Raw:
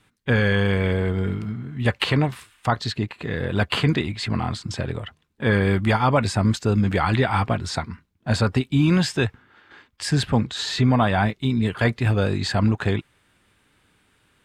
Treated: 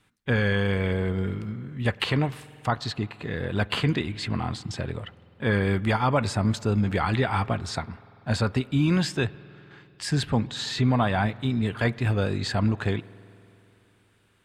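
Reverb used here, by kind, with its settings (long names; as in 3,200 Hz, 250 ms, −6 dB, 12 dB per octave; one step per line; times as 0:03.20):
spring reverb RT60 3.1 s, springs 48 ms, chirp 75 ms, DRR 19.5 dB
level −4 dB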